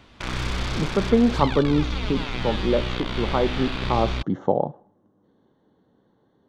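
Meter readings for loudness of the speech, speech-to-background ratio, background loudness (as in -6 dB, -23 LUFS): -24.5 LUFS, 4.5 dB, -29.0 LUFS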